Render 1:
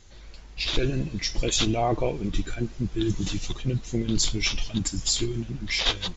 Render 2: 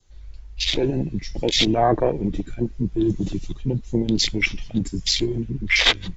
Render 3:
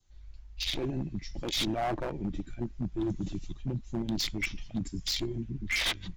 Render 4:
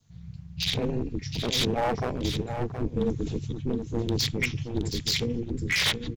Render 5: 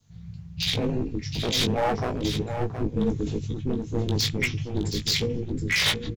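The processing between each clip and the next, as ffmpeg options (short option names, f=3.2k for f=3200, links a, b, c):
-filter_complex "[0:a]afwtdn=0.0355,adynamicequalizer=threshold=0.00398:dfrequency=2000:dqfactor=2.2:tfrequency=2000:tqfactor=2.2:attack=5:release=100:ratio=0.375:range=4:mode=boostabove:tftype=bell,acrossover=split=160|900|1500[a][b][c][d];[a]acompressor=threshold=-33dB:ratio=6[e];[e][b][c][d]amix=inputs=4:normalize=0,volume=6.5dB"
-af "asoftclip=type=hard:threshold=-16dB,equalizer=f=460:t=o:w=0.34:g=-9.5,volume=-9dB"
-af "aeval=exprs='val(0)*sin(2*PI*120*n/s)':c=same,aecho=1:1:721:0.376,volume=7.5dB"
-filter_complex "[0:a]asplit=2[a][b];[b]adelay=19,volume=-6dB[c];[a][c]amix=inputs=2:normalize=0,volume=1dB"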